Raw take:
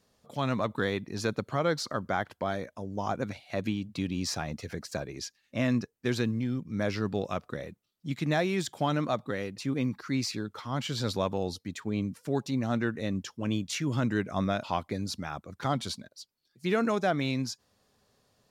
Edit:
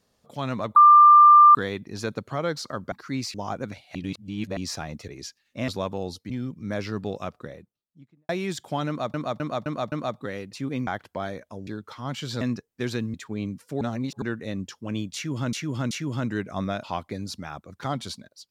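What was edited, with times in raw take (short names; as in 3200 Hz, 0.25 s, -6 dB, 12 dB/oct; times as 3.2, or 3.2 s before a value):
0.76 add tone 1190 Hz -8.5 dBFS 0.79 s
2.13–2.93 swap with 9.92–10.34
3.54–4.16 reverse
4.67–5.06 cut
5.66–6.39 swap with 11.08–11.7
7.24–8.38 studio fade out
8.97–9.23 loop, 5 plays
12.37–12.78 reverse
13.71–14.09 loop, 3 plays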